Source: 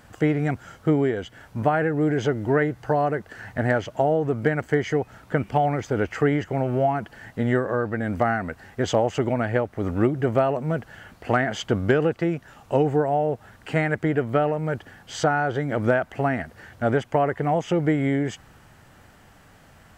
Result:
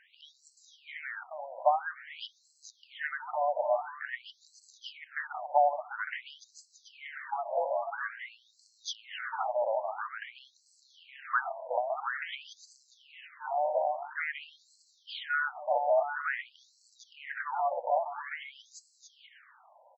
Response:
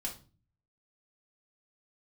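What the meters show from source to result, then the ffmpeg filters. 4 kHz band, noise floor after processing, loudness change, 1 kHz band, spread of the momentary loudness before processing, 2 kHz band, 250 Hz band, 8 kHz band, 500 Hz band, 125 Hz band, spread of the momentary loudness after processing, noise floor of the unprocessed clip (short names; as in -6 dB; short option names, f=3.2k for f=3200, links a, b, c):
-5.5 dB, -68 dBFS, -9.0 dB, -5.0 dB, 8 LU, -6.5 dB, under -40 dB, -10.0 dB, -11.0 dB, under -40 dB, 19 LU, -53 dBFS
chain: -af "aecho=1:1:440|726|911.9|1033|1111:0.631|0.398|0.251|0.158|0.1,afftfilt=real='re*between(b*sr/1024,710*pow(5800/710,0.5+0.5*sin(2*PI*0.49*pts/sr))/1.41,710*pow(5800/710,0.5+0.5*sin(2*PI*0.49*pts/sr))*1.41)':imag='im*between(b*sr/1024,710*pow(5800/710,0.5+0.5*sin(2*PI*0.49*pts/sr))/1.41,710*pow(5800/710,0.5+0.5*sin(2*PI*0.49*pts/sr))*1.41)':win_size=1024:overlap=0.75,volume=-2dB"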